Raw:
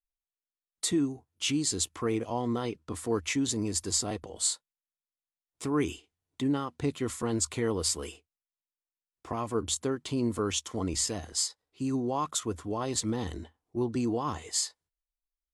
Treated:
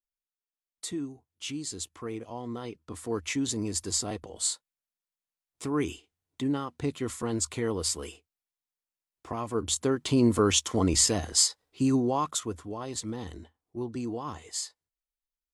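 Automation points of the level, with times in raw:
0:02.40 −7 dB
0:03.42 −0.5 dB
0:09.50 −0.5 dB
0:10.14 +7 dB
0:11.83 +7 dB
0:12.76 −4.5 dB

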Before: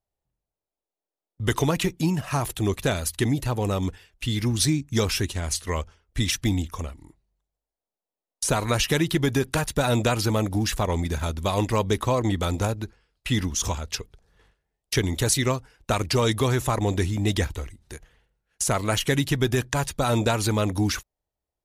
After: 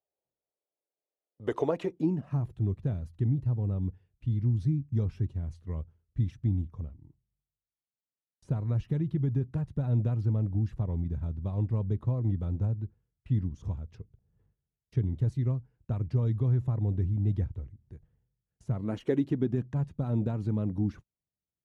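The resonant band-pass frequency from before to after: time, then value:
resonant band-pass, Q 1.7
0:01.88 510 Hz
0:02.49 120 Hz
0:18.72 120 Hz
0:19.07 390 Hz
0:19.67 160 Hz

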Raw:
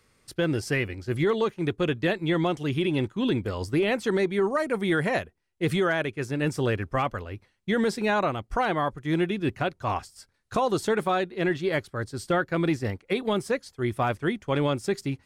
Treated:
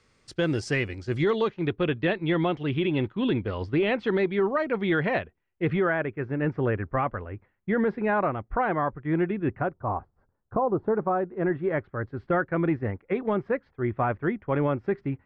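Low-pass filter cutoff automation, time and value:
low-pass filter 24 dB per octave
0:01.03 7,600 Hz
0:01.75 3,500 Hz
0:05.09 3,500 Hz
0:06.05 2,000 Hz
0:09.50 2,000 Hz
0:09.90 1,100 Hz
0:10.82 1,100 Hz
0:11.94 2,000 Hz

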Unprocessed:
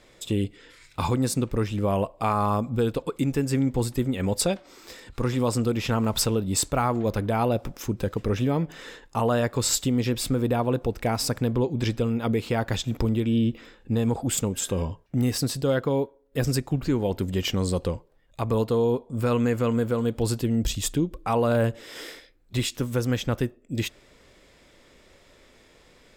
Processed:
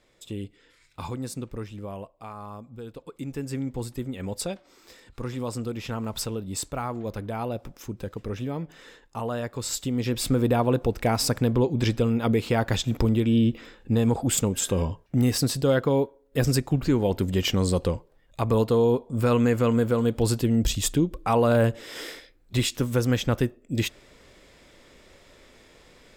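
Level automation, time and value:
0:01.53 −9 dB
0:02.30 −16 dB
0:02.81 −16 dB
0:03.44 −7 dB
0:09.67 −7 dB
0:10.33 +2 dB

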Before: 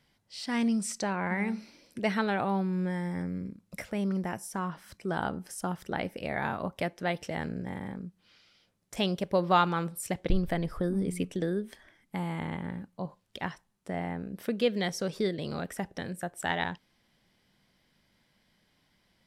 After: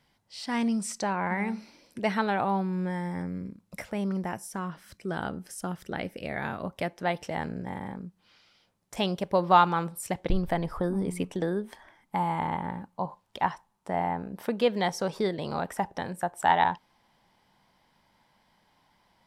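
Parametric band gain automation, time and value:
parametric band 900 Hz 0.78 octaves
0:04.18 +5.5 dB
0:04.67 −3.5 dB
0:06.61 −3.5 dB
0:07.03 +7 dB
0:10.33 +7 dB
0:10.91 +14.5 dB

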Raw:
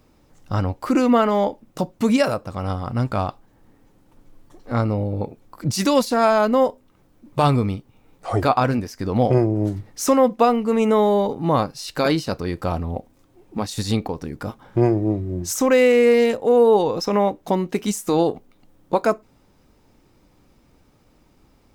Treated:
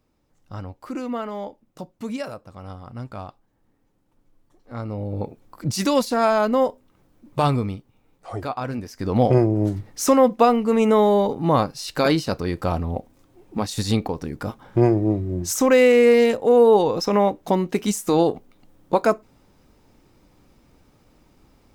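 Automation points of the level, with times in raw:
0:04.74 −12 dB
0:05.17 −2 dB
0:07.40 −2 dB
0:08.56 −11 dB
0:09.11 +0.5 dB

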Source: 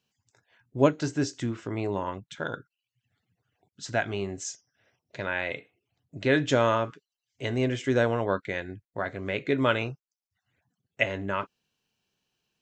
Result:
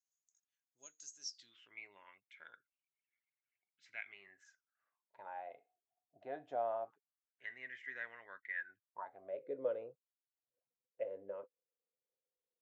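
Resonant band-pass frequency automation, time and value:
resonant band-pass, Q 15
0:01.18 6,600 Hz
0:01.79 2,200 Hz
0:04.05 2,200 Hz
0:05.48 720 Hz
0:06.86 720 Hz
0:07.50 1,900 Hz
0:08.51 1,900 Hz
0:09.45 510 Hz

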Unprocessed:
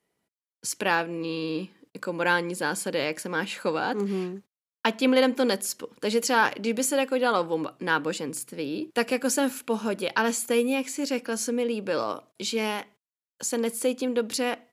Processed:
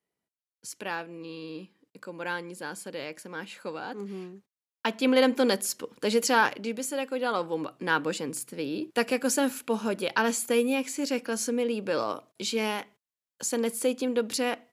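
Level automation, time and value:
0:04.32 −9.5 dB
0:05.27 0 dB
0:06.35 0 dB
0:06.82 −7.5 dB
0:07.96 −1 dB

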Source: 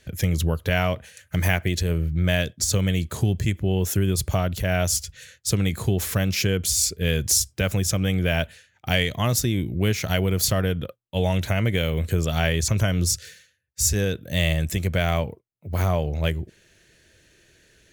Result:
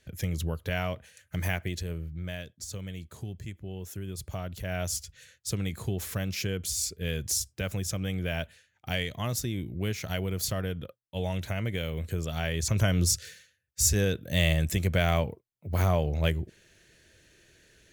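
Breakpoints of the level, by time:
0:01.61 −8.5 dB
0:02.42 −16.5 dB
0:03.96 −16.5 dB
0:04.86 −9 dB
0:12.46 −9 dB
0:12.86 −2.5 dB

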